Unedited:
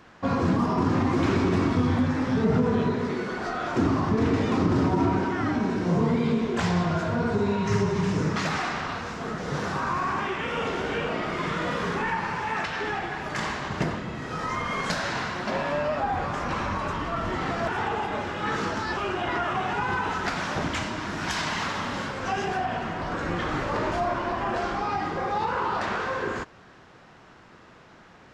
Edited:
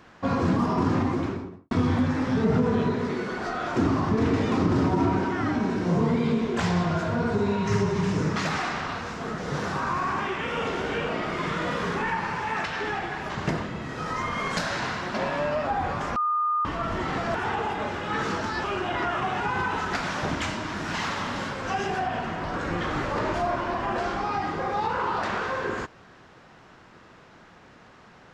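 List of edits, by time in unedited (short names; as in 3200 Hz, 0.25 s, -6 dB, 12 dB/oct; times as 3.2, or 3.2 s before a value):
0.87–1.71 studio fade out
13.3–13.63 cut
16.49–16.98 bleep 1220 Hz -21.5 dBFS
21.27–21.52 cut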